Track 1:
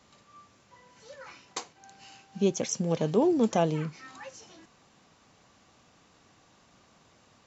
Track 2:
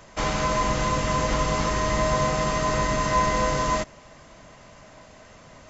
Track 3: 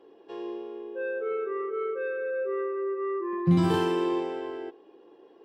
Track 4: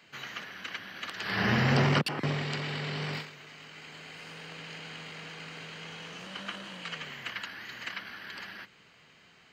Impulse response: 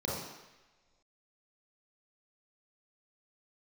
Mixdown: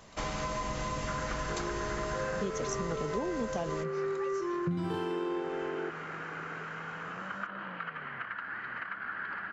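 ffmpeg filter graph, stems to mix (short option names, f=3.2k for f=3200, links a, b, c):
-filter_complex "[0:a]volume=1dB[a];[1:a]volume=-7dB[b];[2:a]highshelf=f=6.1k:g=-7,adelay=1200,volume=2.5dB[c];[3:a]acompressor=threshold=-41dB:ratio=6,lowpass=f=1.4k:t=q:w=3.6,adelay=950,volume=2.5dB[d];[a][b][c][d]amix=inputs=4:normalize=0,acompressor=threshold=-31dB:ratio=6"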